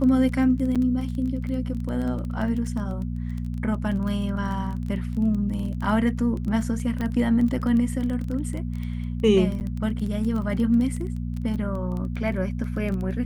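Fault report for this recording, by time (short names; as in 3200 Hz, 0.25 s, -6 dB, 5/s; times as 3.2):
crackle 16/s -29 dBFS
hum 60 Hz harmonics 4 -29 dBFS
0.75–0.76 gap 6.4 ms
7.01 pop -17 dBFS
9.6–9.61 gap 9.3 ms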